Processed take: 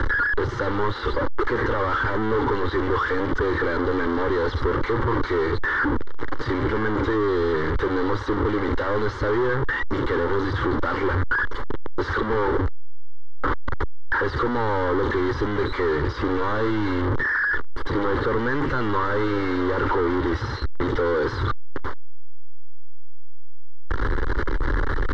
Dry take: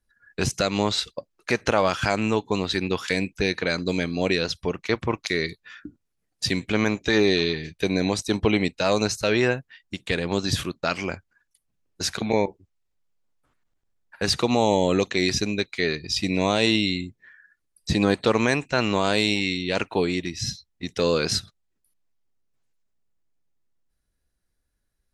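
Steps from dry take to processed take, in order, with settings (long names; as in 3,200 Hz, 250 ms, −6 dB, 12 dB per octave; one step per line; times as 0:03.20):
sign of each sample alone
low-pass filter 2,700 Hz 24 dB per octave
phaser with its sweep stopped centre 680 Hz, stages 6
multiband upward and downward compressor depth 40%
level +7.5 dB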